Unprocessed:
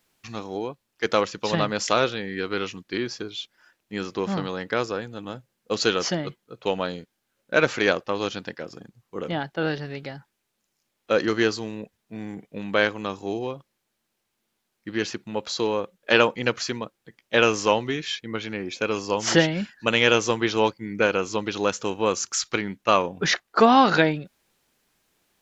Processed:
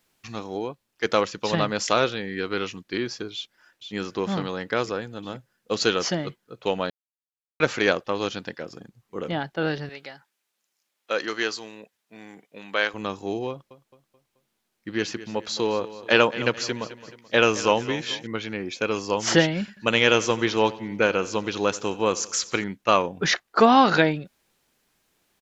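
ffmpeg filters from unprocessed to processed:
-filter_complex "[0:a]asplit=2[a][b];[b]afade=t=in:st=3.34:d=0.01,afade=t=out:st=3.95:d=0.01,aecho=0:1:470|940|1410|1880|2350|2820|3290|3760|4230|4700|5170:0.421697|0.295188|0.206631|0.144642|0.101249|0.0708745|0.0496122|0.0347285|0.02431|0.017017|0.0119119[c];[a][c]amix=inputs=2:normalize=0,asettb=1/sr,asplit=3[d][e][f];[d]atrim=end=9.894[g];[e]atrim=start=9.89:end=12.94,asetpts=PTS-STARTPTS,afade=t=in:d=0.004:c=qsin,afade=t=out:st=3.046:d=0.004:c=qsin,highpass=f=870:p=1[h];[f]atrim=start=12.936[i];[g][h]acrossfade=d=0.004:c1=hsin:c2=qsin[j];[j][i]acrossfade=d=0.004:c1=qsin:c2=hsin,asettb=1/sr,asplit=3[k][l][m];[k]atrim=end=13.494[n];[l]atrim=start=13.49:end=18.27,asetpts=PTS-STARTPTS,afade=t=in:d=0.004:c=qsin,afade=t=out:st=4.776:d=0.004:c=qsin,aecho=1:1:216|432|648|864:0.168|0.0772|0.0355|0.0163,atrim=end_sample=210798[o];[m]atrim=start=18.266[p];[n][o]acrossfade=d=0.004:c1=hsin:c2=qsin[q];[q][p]acrossfade=d=0.004:c1=qsin:c2=hsin,asettb=1/sr,asplit=3[r][s][t];[r]atrim=end=19.594[u];[s]atrim=start=19.59:end=22.64,asetpts=PTS-STARTPTS,afade=t=in:d=0.004:c=qsin,afade=t=out:st=3.046:d=0.004:c=qsin,aecho=1:1:88|176|264|352|440:0.112|0.0628|0.0352|0.0197|0.011,atrim=end_sample=134505[v];[t]atrim=start=22.636[w];[u][v]acrossfade=d=0.004:c1=hsin:c2=qsin[x];[x][w]acrossfade=d=0.004:c1=qsin:c2=hsin,asplit=3[y][z][aa];[y]atrim=end=6.9,asetpts=PTS-STARTPTS,afade=t=out:st=6.896:d=0.004:c=hsin[ab];[z]atrim=start=6.9:end=7.6,asetpts=PTS-STARTPTS,volume=0[ac];[aa]atrim=start=7.6,asetpts=PTS-STARTPTS,afade=t=in:d=0.004:c=hsin[ad];[ab][ac][ad]concat=n=3:v=0:a=1"

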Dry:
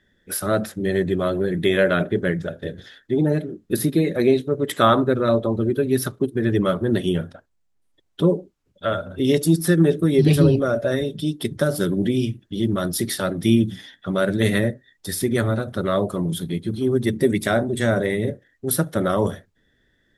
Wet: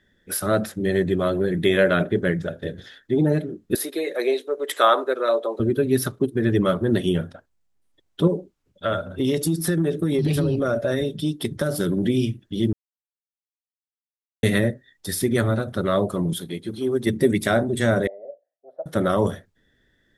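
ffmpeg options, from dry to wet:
-filter_complex "[0:a]asettb=1/sr,asplit=3[a][b][c];[a]atrim=end=3.754[d];[b]atrim=start=3.75:end=5.6,asetpts=PTS-STARTPTS,afade=t=in:d=0.004:c=qsin,afade=t=out:st=1.846:d=0.004:c=qsin,highpass=f=420:w=0.5412,highpass=f=420:w=1.3066[e];[c]atrim=start=5.596[f];[d][e]acrossfade=d=0.004:c1=hsin:c2=qsin[g];[g][f]acrossfade=d=0.004:c1=qsin:c2=hsin,asettb=1/sr,asplit=3[h][i][j];[h]atrim=end=8.274[k];[i]atrim=start=8.27:end=12.06,asetpts=PTS-STARTPTS,afade=t=in:d=0.004:c=qsin,afade=t=out:st=3.786:d=0.004:c=qsin,acompressor=threshold=-17dB:ratio=6:attack=3.2:release=140:knee=1:detection=peak[l];[j]atrim=start=12.056[m];[k][l]acrossfade=d=0.004:c1=hsin:c2=qsin[n];[n][m]acrossfade=d=0.004:c1=qsin:c2=hsin,asettb=1/sr,asplit=3[o][p][q];[o]atrim=end=16.334[r];[p]atrim=start=16.33:end=17.07,asetpts=PTS-STARTPTS,afade=t=in:d=0.004:c=qsin,afade=t=out:st=0.736:d=0.004:c=qsin,bass=f=250:g=-10,treble=f=4k:g=0[s];[q]atrim=start=17.066[t];[r][s]acrossfade=d=0.004:c1=hsin:c2=qsin[u];[u][t]acrossfade=d=0.004:c1=qsin:c2=hsin,asettb=1/sr,asplit=3[v][w][x];[v]atrim=end=18.074[y];[w]atrim=start=18.07:end=18.86,asetpts=PTS-STARTPTS,afade=t=in:d=0.004:c=qsin,afade=t=out:st=0.786:d=0.004:c=qsin,asuperpass=centerf=640:order=4:qfactor=3.8[z];[x]atrim=start=18.856[aa];[y][z]acrossfade=d=0.004:c1=hsin:c2=qsin[ab];[ab][aa]acrossfade=d=0.004:c1=qsin:c2=hsin,asplit=3[ac][ad][ae];[ac]atrim=end=12.73,asetpts=PTS-STARTPTS,afade=t=out:st=12.726:d=0.004:c=hsin[af];[ad]atrim=start=12.73:end=14.43,asetpts=PTS-STARTPTS,volume=0[ag];[ae]atrim=start=14.43,asetpts=PTS-STARTPTS,afade=t=in:d=0.004:c=hsin[ah];[af][ag][ah]concat=n=3:v=0:a=1"

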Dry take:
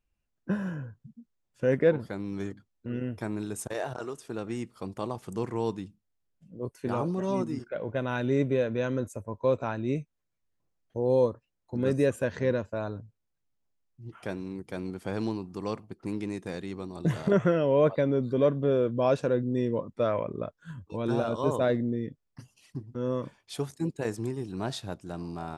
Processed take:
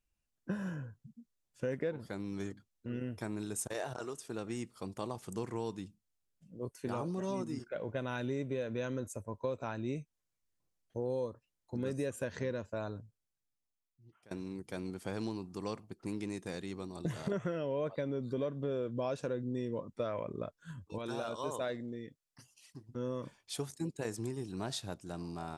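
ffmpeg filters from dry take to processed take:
-filter_complex "[0:a]asettb=1/sr,asplit=3[a][b][c];[a]atrim=end=20.984[d];[b]atrim=start=20.98:end=22.89,asetpts=PTS-STARTPTS,afade=t=in:d=0.004:c=qsin,afade=t=out:st=1.906:d=0.004:c=qsin,lowshelf=f=430:g=-10.5[e];[c]atrim=start=22.886[f];[d][e]acrossfade=d=0.004:c1=hsin:c2=qsin[g];[g][f]acrossfade=d=0.004:c1=qsin:c2=hsin,asplit=2[h][i];[h]atrim=end=14.31,asetpts=PTS-STARTPTS,afade=t=out:st=12.87:d=1.44:silence=0.0668344[j];[i]atrim=start=14.31,asetpts=PTS-STARTPTS,afade=t=in:d=0.004:c=hsin:silence=0.0668344[k];[j][k]concat=n=2:v=0:a=1,equalizer=f=8.2k:t=o:w=2.1:g=7,acompressor=threshold=-27dB:ratio=6,volume=-5dB"

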